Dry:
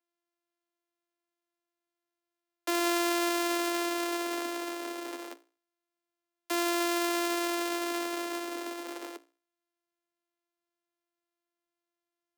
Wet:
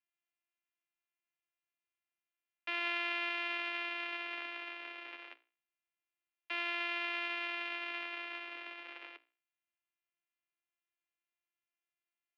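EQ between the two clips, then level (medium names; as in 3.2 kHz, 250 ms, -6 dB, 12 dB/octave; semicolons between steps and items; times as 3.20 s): band-pass filter 2.6 kHz, Q 3.1; distance through air 340 m; +8.0 dB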